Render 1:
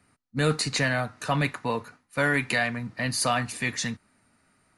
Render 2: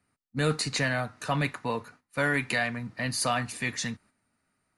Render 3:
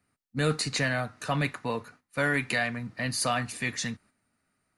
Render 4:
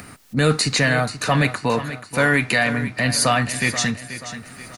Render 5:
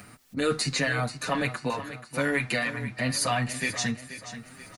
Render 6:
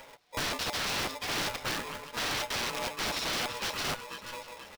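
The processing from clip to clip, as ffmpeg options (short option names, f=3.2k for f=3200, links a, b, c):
-af "agate=range=-8dB:threshold=-52dB:ratio=16:detection=peak,volume=-2.5dB"
-af "equalizer=f=930:w=5.4:g=-3"
-filter_complex "[0:a]asplit=2[a][b];[b]alimiter=limit=-24dB:level=0:latency=1,volume=-2dB[c];[a][c]amix=inputs=2:normalize=0,acompressor=mode=upward:threshold=-29dB:ratio=2.5,aecho=1:1:482|964|1446|1928:0.237|0.107|0.048|0.0216,volume=6.5dB"
-filter_complex "[0:a]asplit=2[a][b];[b]adelay=6.7,afreqshift=2.1[c];[a][c]amix=inputs=2:normalize=1,volume=-5dB"
-af "aecho=1:1:634:0.119,aresample=11025,aeval=exprs='(mod(18.8*val(0)+1,2)-1)/18.8':c=same,aresample=44100,aeval=exprs='val(0)*sgn(sin(2*PI*730*n/s))':c=same,volume=-1.5dB"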